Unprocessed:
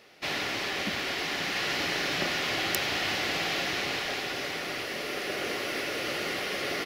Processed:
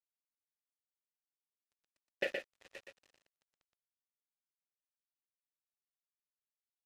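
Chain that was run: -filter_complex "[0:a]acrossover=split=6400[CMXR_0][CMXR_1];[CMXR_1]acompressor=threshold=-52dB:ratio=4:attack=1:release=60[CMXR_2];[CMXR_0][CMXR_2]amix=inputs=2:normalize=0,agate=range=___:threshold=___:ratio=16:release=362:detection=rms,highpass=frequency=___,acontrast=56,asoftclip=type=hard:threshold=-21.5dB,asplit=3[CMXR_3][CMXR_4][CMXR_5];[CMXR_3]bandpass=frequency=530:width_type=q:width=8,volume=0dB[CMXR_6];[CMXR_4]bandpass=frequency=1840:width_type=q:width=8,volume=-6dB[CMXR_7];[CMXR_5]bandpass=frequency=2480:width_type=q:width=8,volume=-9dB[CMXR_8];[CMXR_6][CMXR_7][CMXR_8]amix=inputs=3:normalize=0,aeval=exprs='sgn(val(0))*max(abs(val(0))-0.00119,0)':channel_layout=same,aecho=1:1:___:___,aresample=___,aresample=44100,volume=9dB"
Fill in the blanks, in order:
-35dB, -24dB, 100, 120, 0.596, 32000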